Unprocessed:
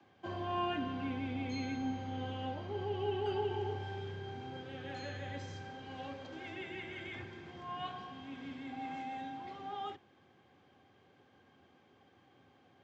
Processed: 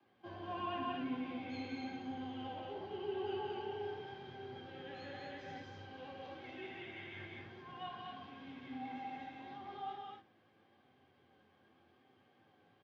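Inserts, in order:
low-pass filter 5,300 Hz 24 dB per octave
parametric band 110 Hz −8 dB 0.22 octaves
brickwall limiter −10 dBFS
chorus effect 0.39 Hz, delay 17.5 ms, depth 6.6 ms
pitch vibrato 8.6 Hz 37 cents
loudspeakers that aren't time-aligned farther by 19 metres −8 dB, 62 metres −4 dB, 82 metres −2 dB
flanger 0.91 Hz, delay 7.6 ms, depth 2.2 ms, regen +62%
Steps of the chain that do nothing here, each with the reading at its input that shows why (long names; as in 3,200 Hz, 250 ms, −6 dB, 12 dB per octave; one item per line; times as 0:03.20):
brickwall limiter −10 dBFS: peak of its input −24.5 dBFS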